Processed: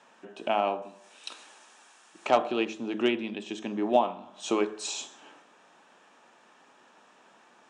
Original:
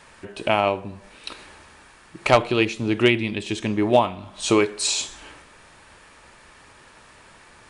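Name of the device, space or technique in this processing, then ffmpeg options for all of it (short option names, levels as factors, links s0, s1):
television speaker: -filter_complex "[0:a]highpass=f=200:w=0.5412,highpass=f=200:w=1.3066,equalizer=f=230:t=q:w=4:g=3,equalizer=f=750:t=q:w=4:g=6,equalizer=f=2100:t=q:w=4:g=-8,equalizer=f=4500:t=q:w=4:g=-9,lowpass=f=7100:w=0.5412,lowpass=f=7100:w=1.3066,bandreject=f=54.06:t=h:w=4,bandreject=f=108.12:t=h:w=4,bandreject=f=162.18:t=h:w=4,bandreject=f=216.24:t=h:w=4,bandreject=f=270.3:t=h:w=4,bandreject=f=324.36:t=h:w=4,bandreject=f=378.42:t=h:w=4,bandreject=f=432.48:t=h:w=4,bandreject=f=486.54:t=h:w=4,bandreject=f=540.6:t=h:w=4,bandreject=f=594.66:t=h:w=4,bandreject=f=648.72:t=h:w=4,bandreject=f=702.78:t=h:w=4,bandreject=f=756.84:t=h:w=4,bandreject=f=810.9:t=h:w=4,bandreject=f=864.96:t=h:w=4,bandreject=f=919.02:t=h:w=4,bandreject=f=973.08:t=h:w=4,bandreject=f=1027.14:t=h:w=4,bandreject=f=1081.2:t=h:w=4,bandreject=f=1135.26:t=h:w=4,bandreject=f=1189.32:t=h:w=4,bandreject=f=1243.38:t=h:w=4,bandreject=f=1297.44:t=h:w=4,bandreject=f=1351.5:t=h:w=4,bandreject=f=1405.56:t=h:w=4,bandreject=f=1459.62:t=h:w=4,bandreject=f=1513.68:t=h:w=4,bandreject=f=1567.74:t=h:w=4,bandreject=f=1621.8:t=h:w=4,bandreject=f=1675.86:t=h:w=4,bandreject=f=1729.92:t=h:w=4,bandreject=f=1783.98:t=h:w=4,bandreject=f=1838.04:t=h:w=4,bandreject=f=1892.1:t=h:w=4,asettb=1/sr,asplit=3[s0][s1][s2];[s0]atrim=end=0.824[s3];[s1]atrim=start=0.82:end=2.26,asetpts=PTS-STARTPTS,afade=t=in:d=0.004:c=qsin,afade=t=out:st=1.436:d=0.004:c=qsin,aemphasis=mode=production:type=riaa[s4];[s2]atrim=start=2.256[s5];[s3][s4]acrossfade=d=0.004:c1=hsin:c2=qsin[s6];[s6][s5]acrossfade=d=0.004:c1=qsin:c2=hsin,volume=0.422"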